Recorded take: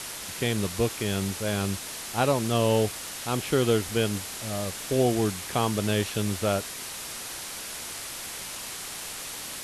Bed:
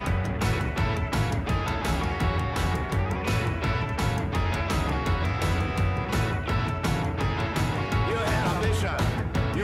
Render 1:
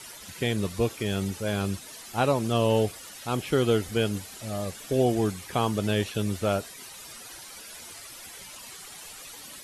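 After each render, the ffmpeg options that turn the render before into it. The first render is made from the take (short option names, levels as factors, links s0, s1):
-af "afftdn=nr=12:nf=-38"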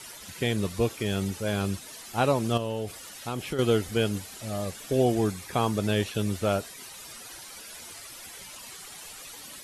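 -filter_complex "[0:a]asettb=1/sr,asplit=3[s0][s1][s2];[s0]atrim=end=2.574[s3];[s1]atrim=start=2.57:end=3.59,asetpts=PTS-STARTPTS,afade=t=in:d=0.004:c=qsin,afade=t=out:st=1.016:d=0.004:c=qsin,acompressor=threshold=0.0447:ratio=6:attack=3.2:release=140:knee=1:detection=peak[s4];[s2]atrim=start=3.586[s5];[s3][s4]acrossfade=d=0.004:c1=hsin:c2=qsin[s6];[s6][s5]acrossfade=d=0.004:c1=qsin:c2=hsin,asettb=1/sr,asplit=3[s7][s8][s9];[s7]atrim=end=5.224[s10];[s8]atrim=start=5.22:end=5.91,asetpts=PTS-STARTPTS,afade=t=in:d=0.004:c=qsin,afade=t=out:st=0.686:d=0.004:c=qsin,bandreject=f=3000:w=12[s11];[s9]atrim=start=5.906[s12];[s10][s11]acrossfade=d=0.004:c1=hsin:c2=qsin[s13];[s13][s12]acrossfade=d=0.004:c1=qsin:c2=hsin"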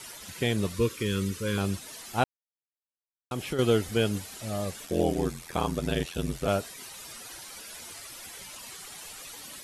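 -filter_complex "[0:a]asettb=1/sr,asplit=3[s0][s1][s2];[s0]atrim=end=0.754[s3];[s1]atrim=start=0.75:end=1.58,asetpts=PTS-STARTPTS,afade=t=in:d=0.004:c=qsin,afade=t=out:st=0.826:d=0.004:c=qsin,asuperstop=centerf=720:order=12:qfactor=1.9[s4];[s2]atrim=start=1.576[s5];[s3][s4]acrossfade=d=0.004:c1=hsin:c2=qsin[s6];[s6][s5]acrossfade=d=0.004:c1=qsin:c2=hsin,asplit=3[s7][s8][s9];[s7]afade=t=out:st=4.85:d=0.02[s10];[s8]aeval=exprs='val(0)*sin(2*PI*42*n/s)':c=same,afade=t=in:st=4.85:d=0.02,afade=t=out:st=6.47:d=0.02[s11];[s9]afade=t=in:st=6.47:d=0.02[s12];[s10][s11][s12]amix=inputs=3:normalize=0,asplit=3[s13][s14][s15];[s13]atrim=end=2.24,asetpts=PTS-STARTPTS,afade=t=out:st=2.236:d=0.004:c=hsin[s16];[s14]atrim=start=2.24:end=3.31,asetpts=PTS-STARTPTS,volume=0[s17];[s15]atrim=start=3.31,asetpts=PTS-STARTPTS,afade=t=in:d=0.004:c=hsin[s18];[s16][s17][s18]concat=n=3:v=0:a=1"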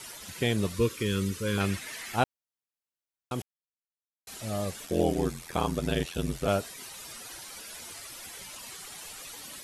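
-filter_complex "[0:a]asettb=1/sr,asplit=3[s0][s1][s2];[s0]atrim=end=1.604[s3];[s1]atrim=start=1.6:end=2.16,asetpts=PTS-STARTPTS,afade=t=in:d=0.004:c=qsin,afade=t=out:st=0.556:d=0.004:c=qsin,equalizer=f=2000:w=1.5:g=12.5[s4];[s2]atrim=start=2.156[s5];[s3][s4]acrossfade=d=0.004:c1=hsin:c2=qsin[s6];[s6][s5]acrossfade=d=0.004:c1=qsin:c2=hsin,asplit=3[s7][s8][s9];[s7]atrim=end=3.42,asetpts=PTS-STARTPTS,afade=t=out:st=3.416:d=0.004:c=hsin[s10];[s8]atrim=start=3.42:end=4.27,asetpts=PTS-STARTPTS,volume=0[s11];[s9]atrim=start=4.27,asetpts=PTS-STARTPTS,afade=t=in:d=0.004:c=hsin[s12];[s10][s11][s12]concat=n=3:v=0:a=1"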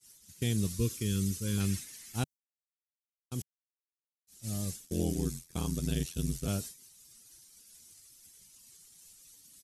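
-af "agate=range=0.0224:threshold=0.0224:ratio=3:detection=peak,firequalizer=gain_entry='entry(150,0);entry(610,-17);entry(5900,3)':delay=0.05:min_phase=1"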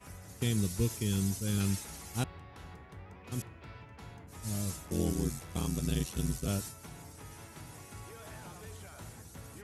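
-filter_complex "[1:a]volume=0.0708[s0];[0:a][s0]amix=inputs=2:normalize=0"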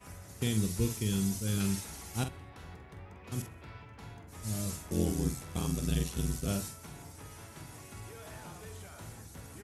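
-filter_complex "[0:a]asplit=2[s0][s1];[s1]adelay=46,volume=0.376[s2];[s0][s2]amix=inputs=2:normalize=0,aecho=1:1:64|128|192|256:0.0708|0.0418|0.0246|0.0145"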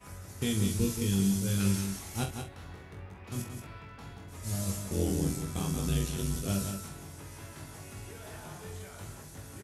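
-filter_complex "[0:a]asplit=2[s0][s1];[s1]adelay=21,volume=0.596[s2];[s0][s2]amix=inputs=2:normalize=0,asplit=2[s3][s4];[s4]aecho=0:1:179:0.447[s5];[s3][s5]amix=inputs=2:normalize=0"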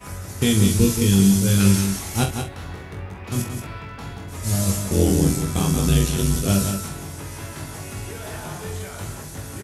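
-af "volume=3.98"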